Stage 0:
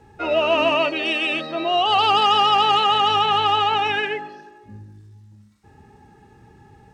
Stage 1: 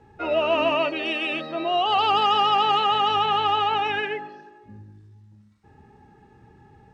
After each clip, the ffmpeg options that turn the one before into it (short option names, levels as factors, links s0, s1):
-af "lowpass=f=3200:p=1,bandreject=f=50:t=h:w=6,bandreject=f=100:t=h:w=6,volume=0.75"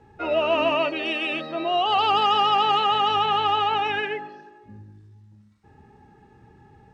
-af anull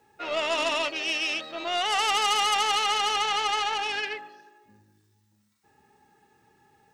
-af "aeval=exprs='0.266*(cos(1*acos(clip(val(0)/0.266,-1,1)))-cos(1*PI/2))+0.0531*(cos(4*acos(clip(val(0)/0.266,-1,1)))-cos(4*PI/2))':c=same,aemphasis=mode=production:type=riaa,volume=0.501"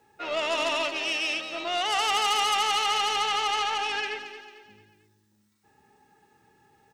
-filter_complex "[0:a]asoftclip=type=tanh:threshold=0.168,asplit=2[s0][s1];[s1]aecho=0:1:223|446|669|892:0.282|0.11|0.0429|0.0167[s2];[s0][s2]amix=inputs=2:normalize=0"